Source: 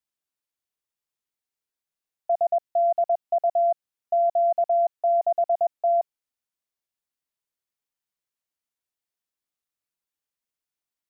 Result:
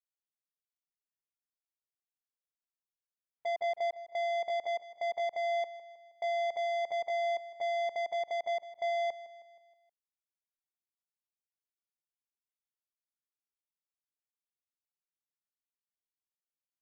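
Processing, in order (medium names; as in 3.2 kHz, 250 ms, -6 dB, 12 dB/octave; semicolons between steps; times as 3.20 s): spectral noise reduction 15 dB; saturation -28 dBFS, distortion -11 dB; tempo 0.66×; on a send: feedback delay 158 ms, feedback 52%, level -16 dB; on the sum: trim -2.5 dB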